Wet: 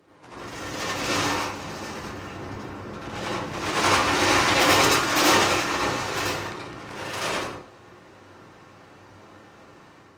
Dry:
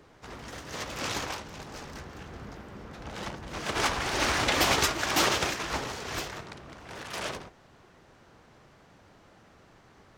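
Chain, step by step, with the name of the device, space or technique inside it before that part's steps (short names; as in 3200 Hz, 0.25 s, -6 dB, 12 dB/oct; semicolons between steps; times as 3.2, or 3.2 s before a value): non-linear reverb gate 0.22 s falling, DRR 9 dB; far-field microphone of a smart speaker (reverb RT60 0.40 s, pre-delay 74 ms, DRR -5.5 dB; HPF 120 Hz 12 dB/oct; AGC gain up to 4.5 dB; gain -2.5 dB; Opus 32 kbps 48000 Hz)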